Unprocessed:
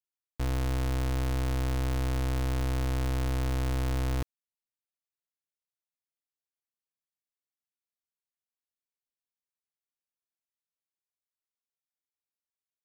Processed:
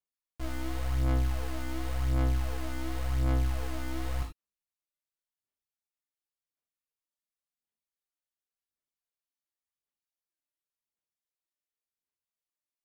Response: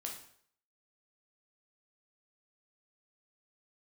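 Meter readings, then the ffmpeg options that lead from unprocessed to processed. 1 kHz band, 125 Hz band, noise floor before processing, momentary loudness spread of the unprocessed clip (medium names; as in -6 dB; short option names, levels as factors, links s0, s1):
-2.5 dB, -2.5 dB, under -85 dBFS, 2 LU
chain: -filter_complex "[0:a]aphaser=in_gain=1:out_gain=1:delay=3.4:decay=0.71:speed=0.91:type=sinusoidal[s0];[1:a]atrim=start_sample=2205,atrim=end_sample=3969,asetrate=40572,aresample=44100[s1];[s0][s1]afir=irnorm=-1:irlink=0,volume=0.562"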